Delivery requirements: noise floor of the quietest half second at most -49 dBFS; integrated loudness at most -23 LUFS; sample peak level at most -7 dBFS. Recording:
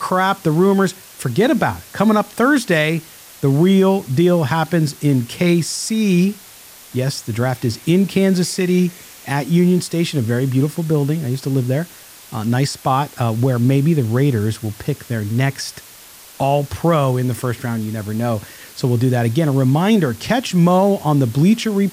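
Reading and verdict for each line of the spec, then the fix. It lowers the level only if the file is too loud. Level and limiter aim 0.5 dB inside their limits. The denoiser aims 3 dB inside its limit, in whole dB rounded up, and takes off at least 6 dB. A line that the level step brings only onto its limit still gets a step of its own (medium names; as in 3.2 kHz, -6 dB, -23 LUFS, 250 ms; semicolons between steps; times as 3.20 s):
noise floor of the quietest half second -41 dBFS: fail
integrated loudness -17.5 LUFS: fail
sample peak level -5.0 dBFS: fail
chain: noise reduction 6 dB, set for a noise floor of -41 dBFS; trim -6 dB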